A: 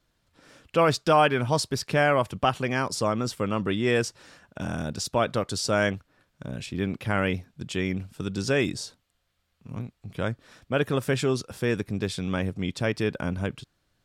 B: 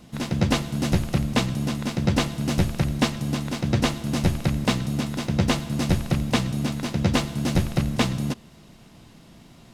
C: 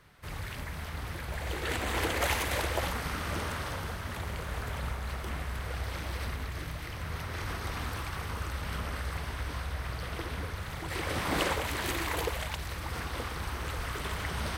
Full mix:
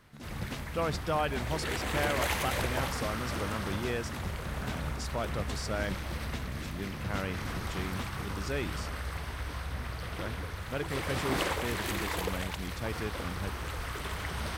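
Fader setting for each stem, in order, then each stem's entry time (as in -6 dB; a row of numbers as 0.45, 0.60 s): -11.0, -19.0, -1.5 dB; 0.00, 0.00, 0.00 s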